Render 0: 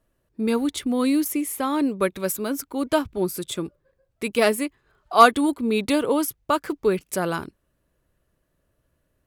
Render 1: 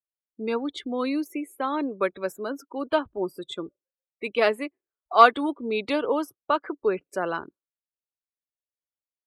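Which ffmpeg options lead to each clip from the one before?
ffmpeg -i in.wav -filter_complex "[0:a]afftdn=noise_reduction=35:noise_floor=-37,acrossover=split=320 4900:gain=0.224 1 0.1[link_01][link_02][link_03];[link_01][link_02][link_03]amix=inputs=3:normalize=0,volume=-1dB" out.wav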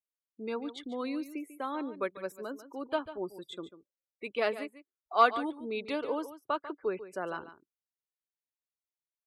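ffmpeg -i in.wav -af "aecho=1:1:144:0.211,volume=-8.5dB" out.wav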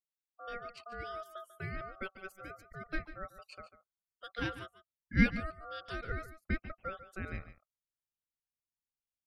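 ffmpeg -i in.wav -af "aeval=exprs='val(0)*sin(2*PI*950*n/s)':channel_layout=same,asubboost=boost=5.5:cutoff=190,volume=-4.5dB" out.wav

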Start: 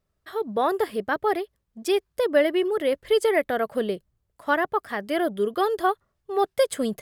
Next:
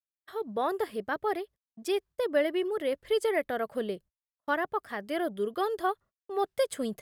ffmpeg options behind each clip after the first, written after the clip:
ffmpeg -i in.wav -af "agate=range=-38dB:threshold=-43dB:ratio=16:detection=peak,volume=-6.5dB" out.wav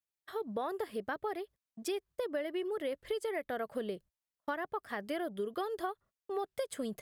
ffmpeg -i in.wav -af "acompressor=threshold=-33dB:ratio=6" out.wav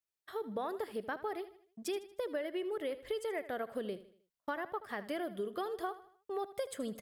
ffmpeg -i in.wav -af "aecho=1:1:78|156|234|312:0.178|0.0765|0.0329|0.0141,volume=-1.5dB" out.wav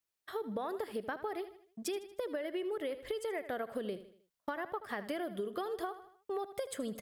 ffmpeg -i in.wav -af "acompressor=threshold=-37dB:ratio=6,volume=3.5dB" out.wav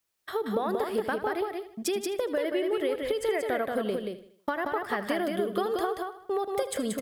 ffmpeg -i in.wav -af "aecho=1:1:181:0.631,volume=8dB" out.wav

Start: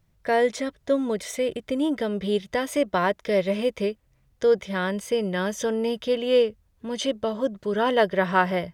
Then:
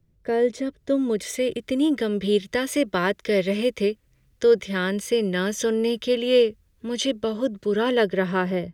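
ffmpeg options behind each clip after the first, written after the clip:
ffmpeg -i in.wav -filter_complex "[0:a]lowshelf=frequency=570:width_type=q:width=1.5:gain=9,acrossover=split=110|1100[link_01][link_02][link_03];[link_03]dynaudnorm=framelen=300:gausssize=7:maxgain=12dB[link_04];[link_01][link_02][link_04]amix=inputs=3:normalize=0,volume=-7.5dB" out.wav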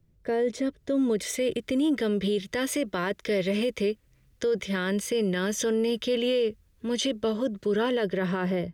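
ffmpeg -i in.wav -af "alimiter=limit=-18.5dB:level=0:latency=1:release=19" out.wav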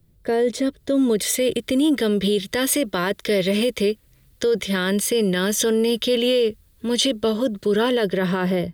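ffmpeg -i in.wav -af "aexciter=amount=2.3:drive=1.2:freq=3400,volume=6dB" out.wav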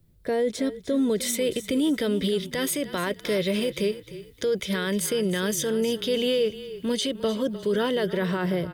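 ffmpeg -i in.wav -filter_complex "[0:a]alimiter=limit=-14.5dB:level=0:latency=1:release=393,asplit=4[link_01][link_02][link_03][link_04];[link_02]adelay=304,afreqshift=-30,volume=-14.5dB[link_05];[link_03]adelay=608,afreqshift=-60,volume=-24.4dB[link_06];[link_04]adelay=912,afreqshift=-90,volume=-34.3dB[link_07];[link_01][link_05][link_06][link_07]amix=inputs=4:normalize=0,volume=-2.5dB" out.wav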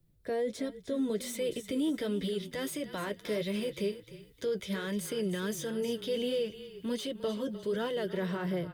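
ffmpeg -i in.wav -filter_complex "[0:a]flanger=delay=5.6:depth=4.8:regen=-45:speed=1.4:shape=sinusoidal,acrossover=split=530|1300[link_01][link_02][link_03];[link_03]asoftclip=type=tanh:threshold=-33dB[link_04];[link_01][link_02][link_04]amix=inputs=3:normalize=0,volume=-4dB" out.wav

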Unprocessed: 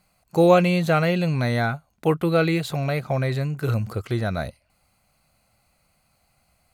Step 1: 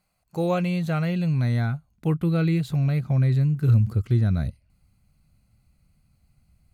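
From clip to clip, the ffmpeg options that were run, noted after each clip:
ffmpeg -i in.wav -af "asubboost=boost=8.5:cutoff=230,volume=-8.5dB" out.wav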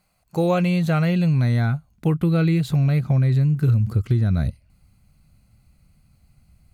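ffmpeg -i in.wav -af "acompressor=threshold=-21dB:ratio=6,volume=6dB" out.wav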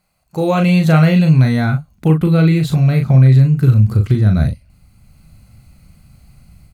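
ffmpeg -i in.wav -filter_complex "[0:a]asplit=2[link_01][link_02];[link_02]adelay=38,volume=-5.5dB[link_03];[link_01][link_03]amix=inputs=2:normalize=0,dynaudnorm=framelen=350:gausssize=3:maxgain=11dB" out.wav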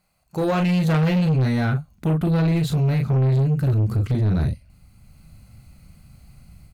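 ffmpeg -i in.wav -af "asoftclip=type=tanh:threshold=-13.5dB,volume=-2.5dB" out.wav

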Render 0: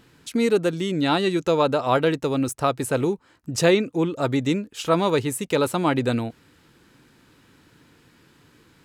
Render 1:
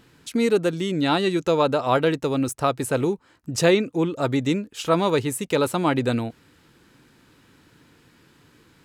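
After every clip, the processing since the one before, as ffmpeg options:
ffmpeg -i in.wav -af anull out.wav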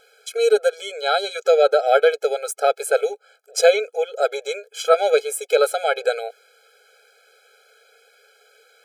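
ffmpeg -i in.wav -af "afftfilt=real='re*eq(mod(floor(b*sr/1024/430),2),1)':imag='im*eq(mod(floor(b*sr/1024/430),2),1)':win_size=1024:overlap=0.75,volume=6.5dB" out.wav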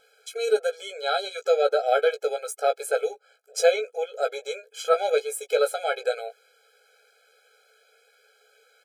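ffmpeg -i in.wav -filter_complex "[0:a]asplit=2[link_01][link_02];[link_02]adelay=16,volume=-7dB[link_03];[link_01][link_03]amix=inputs=2:normalize=0,volume=-6.5dB" out.wav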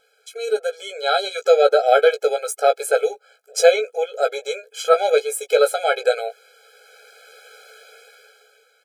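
ffmpeg -i in.wav -af "dynaudnorm=framelen=160:gausssize=11:maxgain=16.5dB,volume=-1dB" out.wav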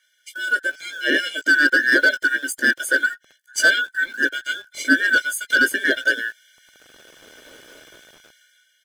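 ffmpeg -i in.wav -filter_complex "[0:a]afftfilt=real='real(if(lt(b,960),b+48*(1-2*mod(floor(b/48),2)),b),0)':imag='imag(if(lt(b,960),b+48*(1-2*mod(floor(b/48),2)),b),0)':win_size=2048:overlap=0.75,acrossover=split=1100|3300[link_01][link_02][link_03];[link_01]acrusher=bits=7:mix=0:aa=0.000001[link_04];[link_02]asoftclip=type=hard:threshold=-15dB[link_05];[link_04][link_05][link_03]amix=inputs=3:normalize=0" out.wav

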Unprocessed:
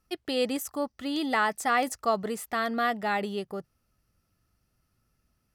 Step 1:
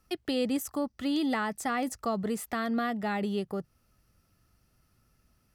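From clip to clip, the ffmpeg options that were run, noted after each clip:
ffmpeg -i in.wav -filter_complex "[0:a]acrossover=split=290[link_01][link_02];[link_02]acompressor=threshold=-44dB:ratio=2[link_03];[link_01][link_03]amix=inputs=2:normalize=0,volume=5dB" out.wav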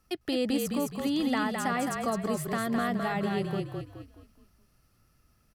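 ffmpeg -i in.wav -filter_complex "[0:a]asplit=6[link_01][link_02][link_03][link_04][link_05][link_06];[link_02]adelay=211,afreqshift=-36,volume=-4dB[link_07];[link_03]adelay=422,afreqshift=-72,volume=-12dB[link_08];[link_04]adelay=633,afreqshift=-108,volume=-19.9dB[link_09];[link_05]adelay=844,afreqshift=-144,volume=-27.9dB[link_10];[link_06]adelay=1055,afreqshift=-180,volume=-35.8dB[link_11];[link_01][link_07][link_08][link_09][link_10][link_11]amix=inputs=6:normalize=0" out.wav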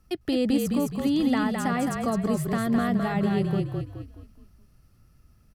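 ffmpeg -i in.wav -af "lowshelf=frequency=280:gain=10.5" out.wav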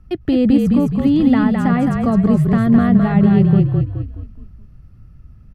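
ffmpeg -i in.wav -af "bass=frequency=250:gain=11,treble=frequency=4000:gain=-14,volume=5.5dB" out.wav

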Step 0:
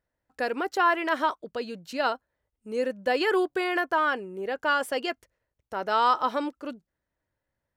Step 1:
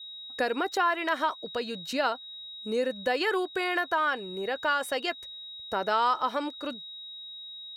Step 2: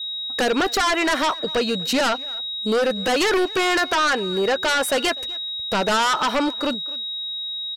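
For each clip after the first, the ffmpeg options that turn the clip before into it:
ffmpeg -i in.wav -af "aeval=exprs='val(0)+0.00562*sin(2*PI*3800*n/s)':channel_layout=same,acompressor=threshold=-32dB:ratio=2,adynamicequalizer=threshold=0.00447:dfrequency=310:dqfactor=0.73:tfrequency=310:tqfactor=0.73:attack=5:release=100:ratio=0.375:range=2.5:mode=cutabove:tftype=bell,volume=5dB" out.wav
ffmpeg -i in.wav -filter_complex "[0:a]asplit=2[link_01][link_02];[link_02]aeval=exprs='0.2*sin(PI/2*4.47*val(0)/0.2)':channel_layout=same,volume=-5dB[link_03];[link_01][link_03]amix=inputs=2:normalize=0,asplit=2[link_04][link_05];[link_05]adelay=250,highpass=300,lowpass=3400,asoftclip=type=hard:threshold=-21.5dB,volume=-18dB[link_06];[link_04][link_06]amix=inputs=2:normalize=0" out.wav

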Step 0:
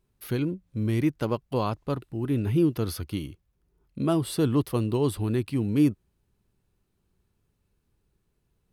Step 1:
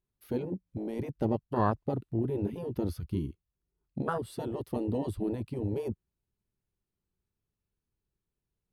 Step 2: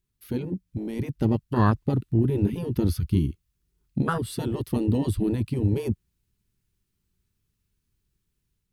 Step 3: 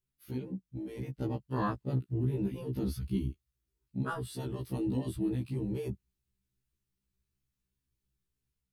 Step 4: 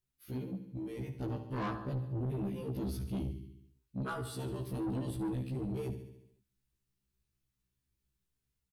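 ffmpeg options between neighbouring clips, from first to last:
ffmpeg -i in.wav -af "afwtdn=0.0398,afftfilt=real='re*lt(hypot(re,im),0.316)':imag='im*lt(hypot(re,im),0.316)':win_size=1024:overlap=0.75,volume=2dB" out.wav
ffmpeg -i in.wav -af "equalizer=frequency=640:width=0.83:gain=-12.5,dynaudnorm=framelen=850:gausssize=3:maxgain=4dB,volume=8dB" out.wav
ffmpeg -i in.wav -af "afftfilt=real='re*1.73*eq(mod(b,3),0)':imag='im*1.73*eq(mod(b,3),0)':win_size=2048:overlap=0.75,volume=-6.5dB" out.wav
ffmpeg -i in.wav -filter_complex "[0:a]asplit=2[link_01][link_02];[link_02]aecho=0:1:71|142|213|284|355|426|497:0.282|0.163|0.0948|0.055|0.0319|0.0185|0.0107[link_03];[link_01][link_03]amix=inputs=2:normalize=0,asoftclip=type=tanh:threshold=-31.5dB" out.wav

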